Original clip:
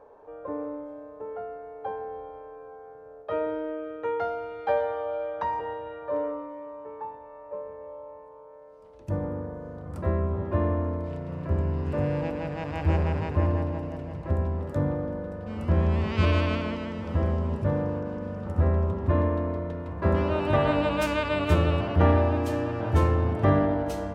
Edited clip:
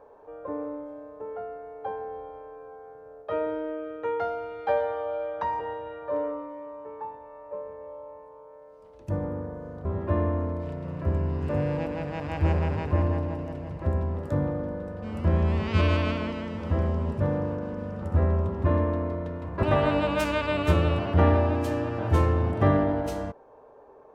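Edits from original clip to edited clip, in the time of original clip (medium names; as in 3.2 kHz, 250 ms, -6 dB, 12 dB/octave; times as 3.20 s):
9.85–10.29 s: delete
20.07–20.45 s: delete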